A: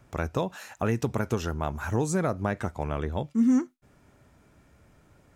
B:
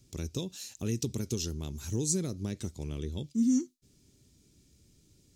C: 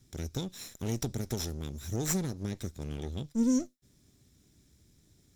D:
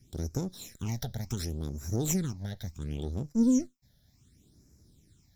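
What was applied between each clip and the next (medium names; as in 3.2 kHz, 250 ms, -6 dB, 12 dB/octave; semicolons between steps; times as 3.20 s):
FFT filter 380 Hz 0 dB, 670 Hz -18 dB, 1.5 kHz -18 dB, 4.2 kHz +11 dB, 6.2 kHz +12 dB, 11 kHz +7 dB; trim -4.5 dB
comb filter that takes the minimum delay 0.54 ms
phase shifter stages 8, 0.69 Hz, lowest notch 320–3400 Hz; trim +2 dB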